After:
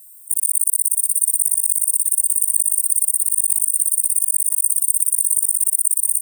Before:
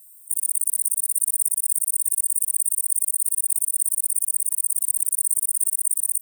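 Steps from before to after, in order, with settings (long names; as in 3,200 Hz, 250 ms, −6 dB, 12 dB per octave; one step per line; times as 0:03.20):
delay that plays each chunk backwards 466 ms, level −11.5 dB
level +4.5 dB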